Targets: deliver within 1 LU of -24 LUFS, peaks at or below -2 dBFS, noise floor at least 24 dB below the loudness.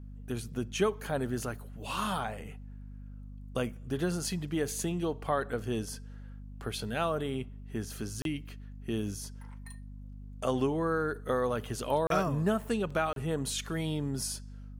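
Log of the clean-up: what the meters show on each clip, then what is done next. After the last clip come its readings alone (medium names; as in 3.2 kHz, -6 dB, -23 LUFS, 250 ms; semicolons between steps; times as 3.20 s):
dropouts 3; longest dropout 32 ms; hum 50 Hz; highest harmonic 250 Hz; hum level -42 dBFS; loudness -33.0 LUFS; peak level -15.5 dBFS; loudness target -24.0 LUFS
-> interpolate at 8.22/12.07/13.13 s, 32 ms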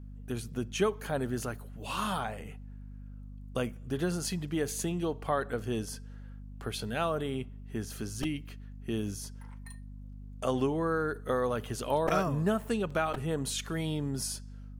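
dropouts 0; hum 50 Hz; highest harmonic 250 Hz; hum level -42 dBFS
-> de-hum 50 Hz, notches 5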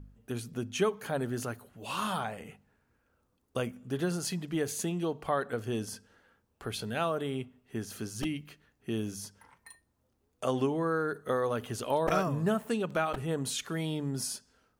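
hum not found; loudness -33.5 LUFS; peak level -15.0 dBFS; loudness target -24.0 LUFS
-> trim +9.5 dB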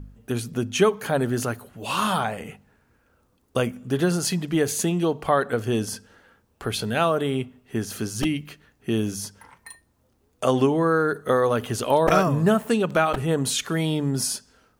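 loudness -24.0 LUFS; peak level -5.5 dBFS; noise floor -65 dBFS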